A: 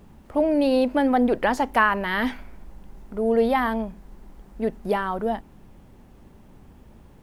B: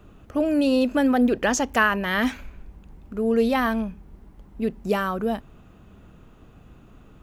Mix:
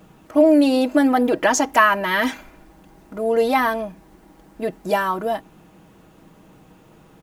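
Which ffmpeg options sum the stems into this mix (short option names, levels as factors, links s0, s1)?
-filter_complex "[0:a]highpass=160,aecho=1:1:6.3:0.68,volume=1.26[s0];[1:a]bass=f=250:g=-9,treble=f=4000:g=7,adelay=2.9,volume=0.841[s1];[s0][s1]amix=inputs=2:normalize=0"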